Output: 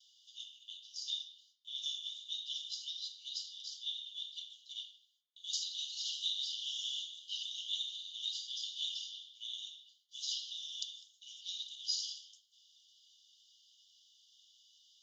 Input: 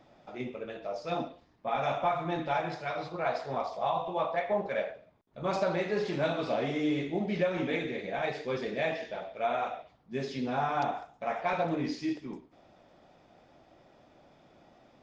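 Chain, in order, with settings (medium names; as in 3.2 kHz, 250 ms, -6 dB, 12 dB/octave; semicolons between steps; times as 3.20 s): gate with hold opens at -54 dBFS; Chebyshev high-pass 2.9 kHz, order 10; reverberation RT60 0.60 s, pre-delay 3 ms, DRR 8 dB; trim +4 dB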